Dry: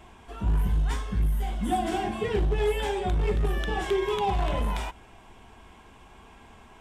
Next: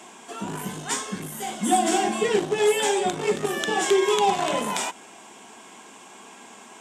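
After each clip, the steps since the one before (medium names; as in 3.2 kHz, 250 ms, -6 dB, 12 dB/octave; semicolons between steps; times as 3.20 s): high-pass 200 Hz 24 dB/octave; peaking EQ 7.3 kHz +14.5 dB 1 oct; trim +6 dB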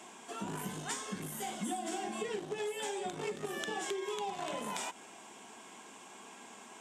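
compression 10:1, threshold -28 dBFS, peak gain reduction 13.5 dB; trim -6.5 dB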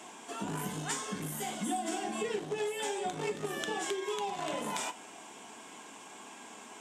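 FDN reverb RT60 0.4 s, low-frequency decay 0.9×, high-frequency decay 0.85×, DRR 9.5 dB; trim +2.5 dB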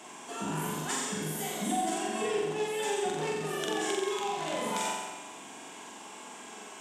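flutter echo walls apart 7.6 m, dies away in 1.1 s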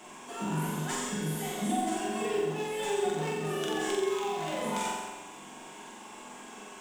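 in parallel at -10.5 dB: sample-rate reducer 8.1 kHz, jitter 20%; on the sum: simulated room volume 270 m³, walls furnished, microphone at 1 m; trim -3.5 dB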